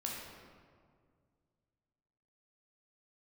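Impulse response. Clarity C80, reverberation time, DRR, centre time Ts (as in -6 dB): 2.0 dB, 2.0 s, -3.0 dB, 90 ms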